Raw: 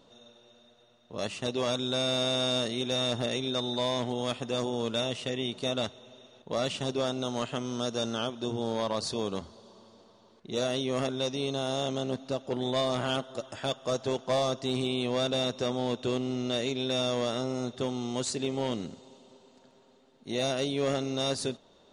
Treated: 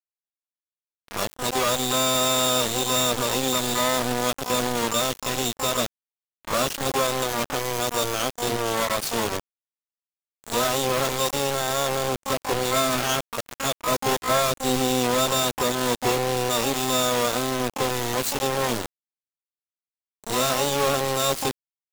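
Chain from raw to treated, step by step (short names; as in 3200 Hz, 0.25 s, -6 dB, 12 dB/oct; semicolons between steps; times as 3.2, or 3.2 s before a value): delay with a stepping band-pass 0.477 s, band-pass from 3700 Hz, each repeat -0.7 oct, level -10 dB; bit-crush 5-bit; harmoniser +12 st -2 dB; gain +4 dB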